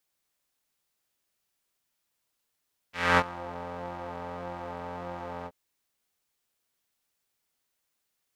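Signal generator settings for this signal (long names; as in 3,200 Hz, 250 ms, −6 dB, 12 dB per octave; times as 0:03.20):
subtractive patch with pulse-width modulation F2, oscillator 2 square, interval +12 semitones, oscillator 2 level −5.5 dB, filter bandpass, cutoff 570 Hz, Q 1.5, filter envelope 2 octaves, filter decay 0.47 s, filter sustain 25%, attack 248 ms, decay 0.05 s, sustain −21 dB, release 0.05 s, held 2.53 s, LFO 1.7 Hz, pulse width 46%, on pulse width 6%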